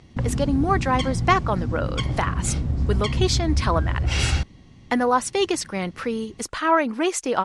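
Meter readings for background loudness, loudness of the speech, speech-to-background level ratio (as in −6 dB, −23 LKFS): −25.5 LKFS, −24.5 LKFS, 1.0 dB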